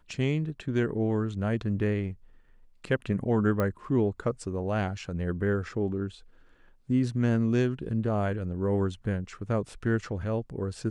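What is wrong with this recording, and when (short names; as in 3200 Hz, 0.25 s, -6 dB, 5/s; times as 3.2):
3.6 pop -16 dBFS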